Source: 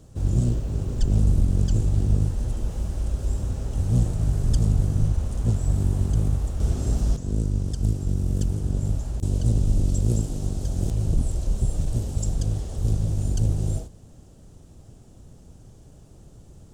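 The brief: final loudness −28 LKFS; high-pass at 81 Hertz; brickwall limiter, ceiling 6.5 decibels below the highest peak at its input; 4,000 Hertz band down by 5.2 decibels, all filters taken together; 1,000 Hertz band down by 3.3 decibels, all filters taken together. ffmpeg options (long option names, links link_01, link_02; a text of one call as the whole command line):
ffmpeg -i in.wav -af "highpass=81,equalizer=frequency=1000:width_type=o:gain=-4.5,equalizer=frequency=4000:width_type=o:gain=-7,volume=1dB,alimiter=limit=-16.5dB:level=0:latency=1" out.wav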